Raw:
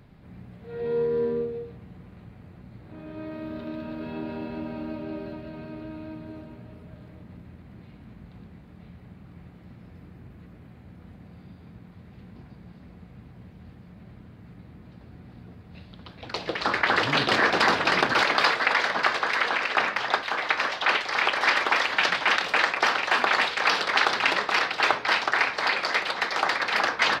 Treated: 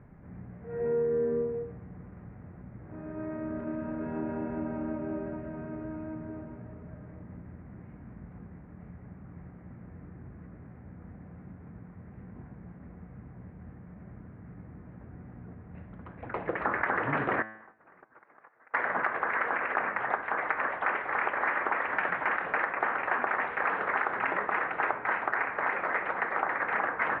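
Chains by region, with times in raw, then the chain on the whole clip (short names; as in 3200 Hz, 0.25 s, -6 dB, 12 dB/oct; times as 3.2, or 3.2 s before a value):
17.42–18.74 LPF 2100 Hz + gate -19 dBFS, range -33 dB + compressor 16:1, threshold -50 dBFS
whole clip: steep low-pass 2000 Hz 36 dB/oct; de-hum 109.2 Hz, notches 35; compressor, threshold -25 dBFS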